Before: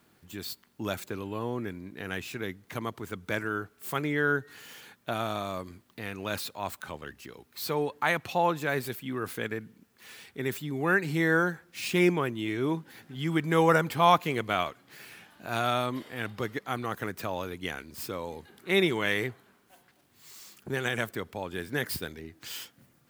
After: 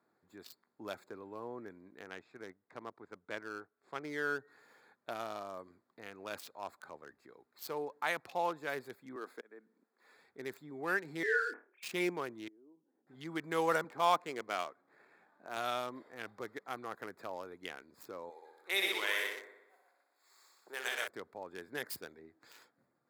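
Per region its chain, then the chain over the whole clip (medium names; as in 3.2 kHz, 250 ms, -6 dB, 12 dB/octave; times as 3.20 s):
2.05–4.05 s: companding laws mixed up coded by A + distance through air 100 m
9.16–10.15 s: high-pass 220 Hz 24 dB/octave + slow attack 365 ms
11.23–11.83 s: formants replaced by sine waves + flutter echo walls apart 4.7 m, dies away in 0.3 s
12.48–13.07 s: compression 8:1, threshold -38 dBFS + ladder band-pass 320 Hz, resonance 45%
13.84–15.57 s: median filter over 9 samples + high-pass 150 Hz
18.30–21.08 s: high-pass 470 Hz + tilt EQ +1.5 dB/octave + multi-head delay 61 ms, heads first and second, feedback 49%, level -6 dB
whole clip: local Wiener filter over 15 samples; high-pass 88 Hz; tone controls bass -14 dB, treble +4 dB; trim -7.5 dB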